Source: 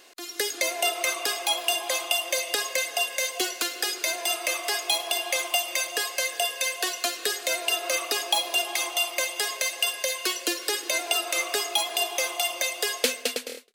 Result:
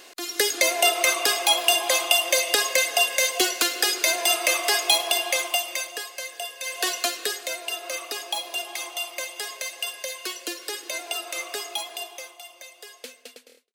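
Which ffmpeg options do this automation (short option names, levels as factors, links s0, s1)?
-af "volume=6.31,afade=t=out:st=4.89:d=1.17:silence=0.237137,afade=t=in:st=6.62:d=0.27:silence=0.298538,afade=t=out:st=6.89:d=0.67:silence=0.375837,afade=t=out:st=11.73:d=0.64:silence=0.266073"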